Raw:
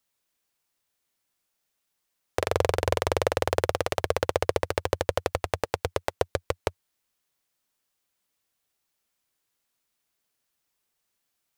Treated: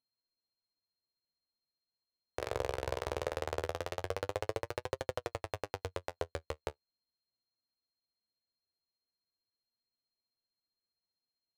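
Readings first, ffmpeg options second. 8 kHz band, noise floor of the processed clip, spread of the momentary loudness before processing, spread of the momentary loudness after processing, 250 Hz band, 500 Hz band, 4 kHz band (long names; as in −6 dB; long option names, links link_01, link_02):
−12.5 dB, below −85 dBFS, 6 LU, 6 LU, −11.0 dB, −11.0 dB, −11.5 dB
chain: -af "aeval=exprs='val(0)+0.00251*sin(2*PI*4200*n/s)':channel_layout=same,adynamicsmooth=sensitivity=7:basefreq=880,flanger=delay=7.4:depth=9.1:regen=36:speed=0.2:shape=triangular,volume=-7.5dB"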